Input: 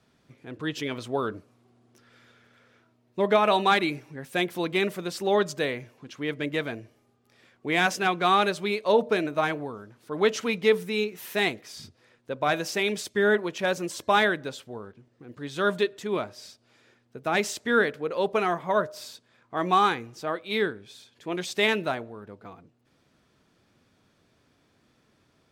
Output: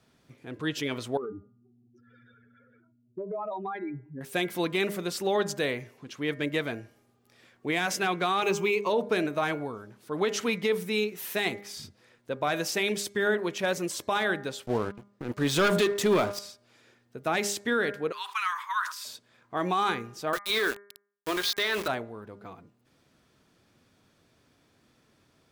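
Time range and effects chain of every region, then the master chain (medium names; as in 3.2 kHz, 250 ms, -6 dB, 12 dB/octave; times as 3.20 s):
1.17–4.21 s: spectral contrast enhancement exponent 2.9 + compression, threshold -32 dBFS
8.42–8.90 s: rippled EQ curve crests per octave 0.75, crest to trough 12 dB + short-mantissa float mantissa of 6-bit
14.66–16.39 s: high-pass 41 Hz 24 dB/octave + waveshaping leveller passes 3
18.12–19.05 s: steep high-pass 970 Hz 72 dB/octave + decay stretcher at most 110 dB/s
20.33–21.88 s: waveshaping leveller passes 2 + cabinet simulation 420–5100 Hz, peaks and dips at 540 Hz -5 dB, 820 Hz -7 dB, 1.2 kHz +5 dB, 1.7 kHz +3 dB, 2.6 kHz -5 dB, 4.1 kHz +5 dB + small samples zeroed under -31.5 dBFS
whole clip: treble shelf 8.1 kHz +5.5 dB; de-hum 202.2 Hz, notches 11; peak limiter -17 dBFS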